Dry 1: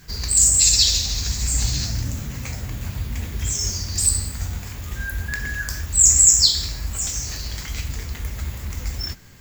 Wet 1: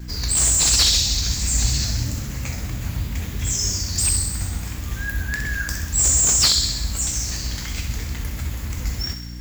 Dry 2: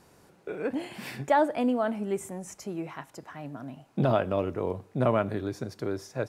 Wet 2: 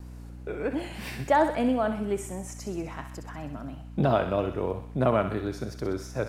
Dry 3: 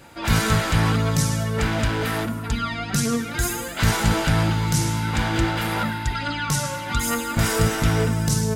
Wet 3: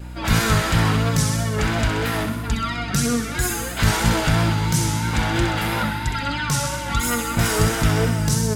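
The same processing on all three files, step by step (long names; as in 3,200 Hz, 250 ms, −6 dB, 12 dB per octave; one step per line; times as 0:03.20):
mains hum 60 Hz, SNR 13 dB
pitch vibrato 3 Hz 58 cents
on a send: feedback echo with a high-pass in the loop 64 ms, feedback 68%, high-pass 850 Hz, level −8 dB
on the sum: slew-rate limiting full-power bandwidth 1,000 Hz
level +1 dB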